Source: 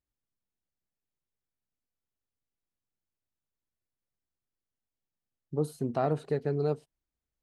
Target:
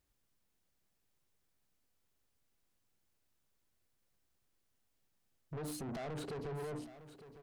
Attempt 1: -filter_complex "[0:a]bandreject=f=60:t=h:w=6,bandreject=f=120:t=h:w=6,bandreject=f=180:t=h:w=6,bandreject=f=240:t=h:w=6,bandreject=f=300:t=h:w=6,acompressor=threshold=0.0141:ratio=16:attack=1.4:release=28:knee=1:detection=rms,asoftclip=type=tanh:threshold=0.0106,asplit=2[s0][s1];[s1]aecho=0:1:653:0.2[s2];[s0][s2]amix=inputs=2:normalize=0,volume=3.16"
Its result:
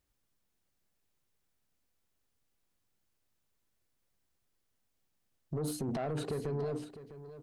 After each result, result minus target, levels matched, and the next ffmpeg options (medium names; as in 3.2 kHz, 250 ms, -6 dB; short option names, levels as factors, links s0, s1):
echo 253 ms early; saturation: distortion -8 dB
-filter_complex "[0:a]bandreject=f=60:t=h:w=6,bandreject=f=120:t=h:w=6,bandreject=f=180:t=h:w=6,bandreject=f=240:t=h:w=6,bandreject=f=300:t=h:w=6,acompressor=threshold=0.0141:ratio=16:attack=1.4:release=28:knee=1:detection=rms,asoftclip=type=tanh:threshold=0.0106,asplit=2[s0][s1];[s1]aecho=0:1:906:0.2[s2];[s0][s2]amix=inputs=2:normalize=0,volume=3.16"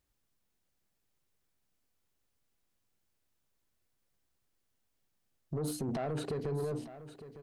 saturation: distortion -8 dB
-filter_complex "[0:a]bandreject=f=60:t=h:w=6,bandreject=f=120:t=h:w=6,bandreject=f=180:t=h:w=6,bandreject=f=240:t=h:w=6,bandreject=f=300:t=h:w=6,acompressor=threshold=0.0141:ratio=16:attack=1.4:release=28:knee=1:detection=rms,asoftclip=type=tanh:threshold=0.00316,asplit=2[s0][s1];[s1]aecho=0:1:906:0.2[s2];[s0][s2]amix=inputs=2:normalize=0,volume=3.16"